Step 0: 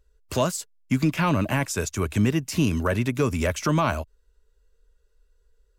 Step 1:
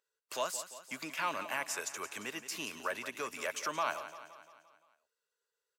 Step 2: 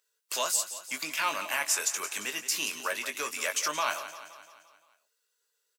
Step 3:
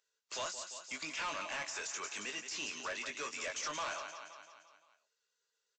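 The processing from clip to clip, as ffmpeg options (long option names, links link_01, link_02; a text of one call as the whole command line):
ffmpeg -i in.wav -filter_complex "[0:a]highpass=730,asplit=2[link_01][link_02];[link_02]aecho=0:1:173|346|519|692|865|1038:0.237|0.133|0.0744|0.0416|0.0233|0.0131[link_03];[link_01][link_03]amix=inputs=2:normalize=0,volume=-7.5dB" out.wav
ffmpeg -i in.wav -filter_complex "[0:a]highpass=frequency=210:poles=1,highshelf=frequency=2400:gain=11,asplit=2[link_01][link_02];[link_02]adelay=20,volume=-8dB[link_03];[link_01][link_03]amix=inputs=2:normalize=0,volume=1.5dB" out.wav
ffmpeg -i in.wav -af "deesser=0.55,aresample=16000,asoftclip=type=tanh:threshold=-31dB,aresample=44100,volume=-3.5dB" out.wav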